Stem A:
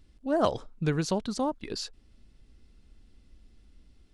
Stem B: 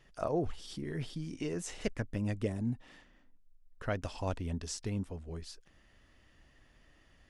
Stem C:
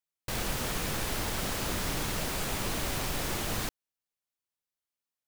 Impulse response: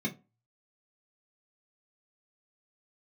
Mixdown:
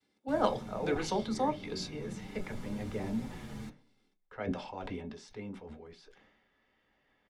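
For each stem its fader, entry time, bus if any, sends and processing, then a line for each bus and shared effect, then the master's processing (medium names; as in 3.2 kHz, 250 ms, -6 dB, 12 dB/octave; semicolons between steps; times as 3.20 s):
-0.5 dB, 0.00 s, send -6 dB, expander -54 dBFS; high-pass 620 Hz 12 dB/octave
-3.5 dB, 0.50 s, send -6 dB, three-band isolator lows -23 dB, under 440 Hz, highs -14 dB, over 4.6 kHz; decay stretcher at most 37 dB/s
-13.5 dB, 0.00 s, send -7.5 dB, low-pass 11 kHz 12 dB/octave; endless flanger 7.2 ms -1.3 Hz; auto duck -8 dB, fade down 1.40 s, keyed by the first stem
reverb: on, RT60 0.30 s, pre-delay 3 ms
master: tilt shelf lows +3.5 dB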